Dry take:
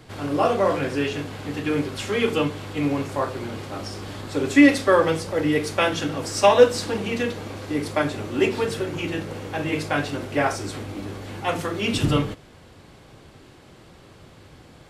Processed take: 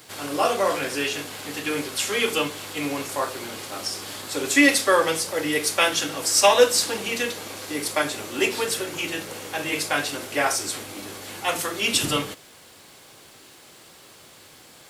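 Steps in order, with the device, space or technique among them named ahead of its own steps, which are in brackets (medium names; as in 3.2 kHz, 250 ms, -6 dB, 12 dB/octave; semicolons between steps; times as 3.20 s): turntable without a phono preamp (RIAA curve recording; white noise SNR 37 dB)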